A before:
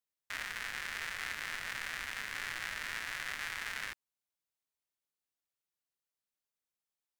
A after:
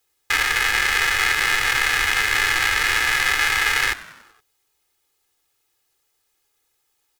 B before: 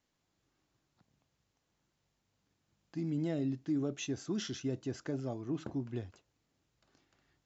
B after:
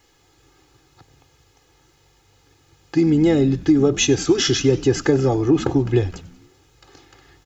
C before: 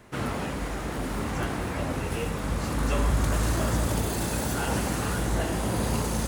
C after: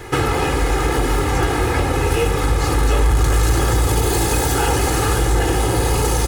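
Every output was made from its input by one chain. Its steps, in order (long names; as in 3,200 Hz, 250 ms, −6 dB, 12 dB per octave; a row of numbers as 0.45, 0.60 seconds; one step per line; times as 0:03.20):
hard clipping −22.5 dBFS
downward compressor 10 to 1, threshold −33 dBFS
comb filter 2.4 ms, depth 97%
echo with shifted repeats 94 ms, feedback 60%, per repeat −94 Hz, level −19 dB
loudness normalisation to −18 LKFS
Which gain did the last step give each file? +19.0, +20.0, +16.0 decibels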